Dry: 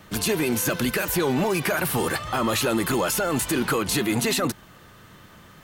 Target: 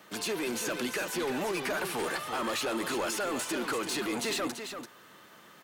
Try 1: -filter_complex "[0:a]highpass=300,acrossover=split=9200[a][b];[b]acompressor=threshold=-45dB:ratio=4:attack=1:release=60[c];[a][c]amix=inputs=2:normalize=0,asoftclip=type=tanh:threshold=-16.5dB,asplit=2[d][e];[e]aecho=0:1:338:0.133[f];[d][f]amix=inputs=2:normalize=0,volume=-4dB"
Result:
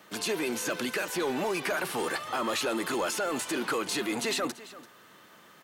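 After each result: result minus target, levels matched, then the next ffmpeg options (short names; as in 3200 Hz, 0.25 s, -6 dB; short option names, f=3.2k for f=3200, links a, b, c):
echo-to-direct -9.5 dB; soft clip: distortion -9 dB
-filter_complex "[0:a]highpass=300,acrossover=split=9200[a][b];[b]acompressor=threshold=-45dB:ratio=4:attack=1:release=60[c];[a][c]amix=inputs=2:normalize=0,asoftclip=type=tanh:threshold=-16.5dB,asplit=2[d][e];[e]aecho=0:1:338:0.398[f];[d][f]amix=inputs=2:normalize=0,volume=-4dB"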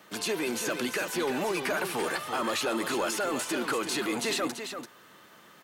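soft clip: distortion -9 dB
-filter_complex "[0:a]highpass=300,acrossover=split=9200[a][b];[b]acompressor=threshold=-45dB:ratio=4:attack=1:release=60[c];[a][c]amix=inputs=2:normalize=0,asoftclip=type=tanh:threshold=-23.5dB,asplit=2[d][e];[e]aecho=0:1:338:0.398[f];[d][f]amix=inputs=2:normalize=0,volume=-4dB"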